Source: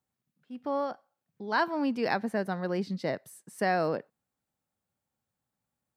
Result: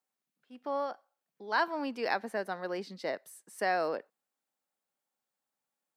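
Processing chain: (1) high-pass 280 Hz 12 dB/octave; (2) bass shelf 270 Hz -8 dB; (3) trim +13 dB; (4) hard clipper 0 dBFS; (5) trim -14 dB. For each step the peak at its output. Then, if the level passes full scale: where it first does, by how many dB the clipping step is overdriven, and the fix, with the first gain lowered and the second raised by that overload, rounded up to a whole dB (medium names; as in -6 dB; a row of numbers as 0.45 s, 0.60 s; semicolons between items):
-15.0 dBFS, -15.5 dBFS, -2.5 dBFS, -2.5 dBFS, -16.5 dBFS; nothing clips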